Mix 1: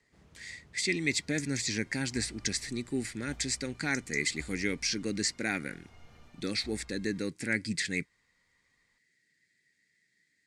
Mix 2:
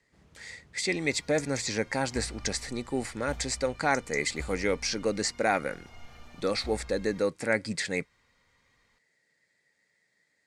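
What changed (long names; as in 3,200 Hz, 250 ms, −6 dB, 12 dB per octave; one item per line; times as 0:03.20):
speech: add flat-topped bell 780 Hz +15.5 dB
second sound +8.5 dB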